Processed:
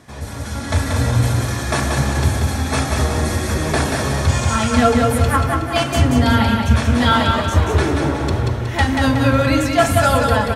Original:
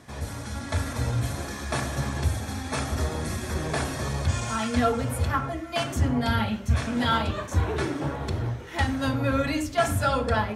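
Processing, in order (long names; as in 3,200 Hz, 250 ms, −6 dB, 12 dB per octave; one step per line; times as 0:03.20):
automatic gain control gain up to 5 dB
on a send: repeating echo 184 ms, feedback 45%, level −4 dB
on the sum: level +3.5 dB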